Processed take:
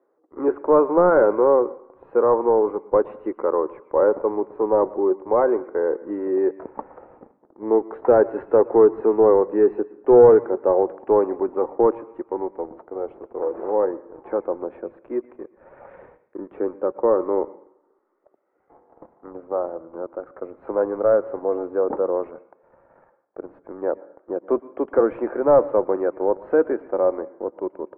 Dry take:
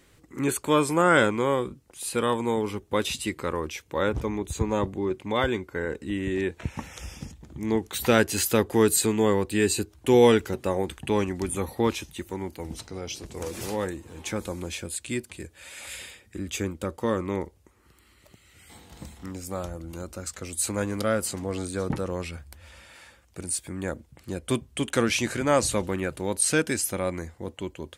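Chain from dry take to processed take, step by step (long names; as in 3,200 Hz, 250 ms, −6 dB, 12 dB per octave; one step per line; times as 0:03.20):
high-pass filter 390 Hz 24 dB per octave
leveller curve on the samples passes 2
Bessel low-pass filter 710 Hz, order 6
on a send: convolution reverb RT60 1.1 s, pre-delay 112 ms, DRR 16 dB
on the sum: level +5.5 dB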